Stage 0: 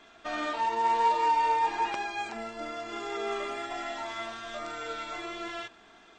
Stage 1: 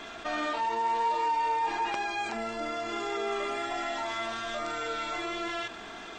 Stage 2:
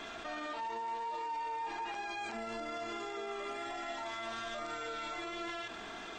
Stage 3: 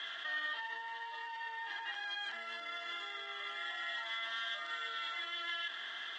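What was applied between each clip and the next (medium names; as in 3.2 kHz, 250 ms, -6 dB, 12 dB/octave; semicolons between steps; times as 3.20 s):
level flattener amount 50%; trim -4.5 dB
peak limiter -30 dBFS, peak gain reduction 11 dB; trim -2.5 dB
two resonant band-passes 2.4 kHz, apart 0.74 oct; trim +10.5 dB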